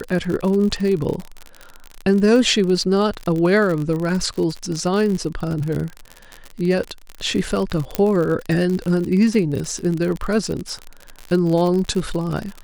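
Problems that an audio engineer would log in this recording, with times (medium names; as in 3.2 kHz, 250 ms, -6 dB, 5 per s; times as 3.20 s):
crackle 53 per s -23 dBFS
7.95 s: pop -5 dBFS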